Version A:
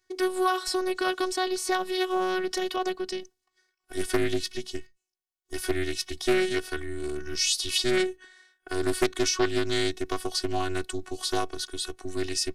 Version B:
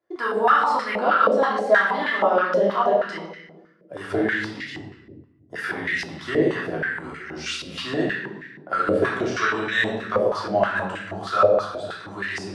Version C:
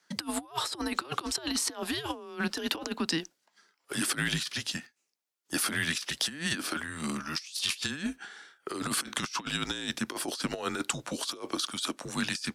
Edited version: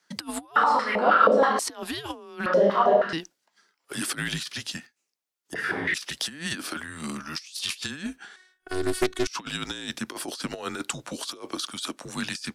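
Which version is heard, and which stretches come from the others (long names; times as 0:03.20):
C
0:00.56–0:01.59: punch in from B
0:02.46–0:03.13: punch in from B
0:05.54–0:05.94: punch in from B
0:08.36–0:09.27: punch in from A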